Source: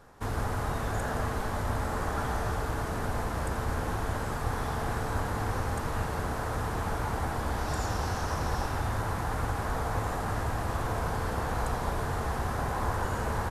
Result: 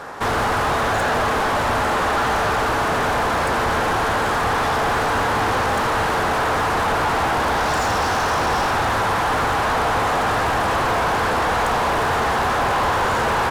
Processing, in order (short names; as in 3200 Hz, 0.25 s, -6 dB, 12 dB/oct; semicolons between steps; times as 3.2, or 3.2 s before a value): overdrive pedal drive 28 dB, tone 2700 Hz, clips at -16.5 dBFS; gain +4.5 dB